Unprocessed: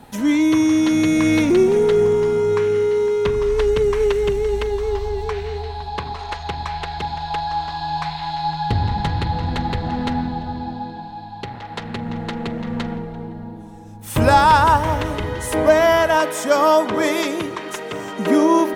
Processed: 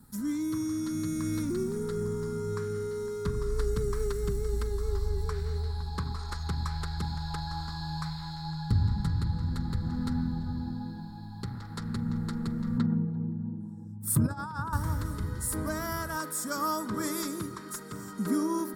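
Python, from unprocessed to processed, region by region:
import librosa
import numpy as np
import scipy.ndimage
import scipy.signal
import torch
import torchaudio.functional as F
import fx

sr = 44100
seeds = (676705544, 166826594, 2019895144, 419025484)

y = fx.chain(x, sr, fx.envelope_sharpen(power=1.5),
    fx.highpass(hz=110.0, slope=24),
    fx.over_compress(threshold_db=-19.0, ratio=-1.0), at=(12.78, 14.73))
y = fx.curve_eq(y, sr, hz=(200.0, 720.0, 1300.0, 2800.0, 4400.0, 11000.0), db=(0, -22, -4, -24, -4, 5))
y = fx.rider(y, sr, range_db=5, speed_s=2.0)
y = fx.notch(y, sr, hz=6200.0, q=8.2)
y = y * 10.0 ** (-5.0 / 20.0)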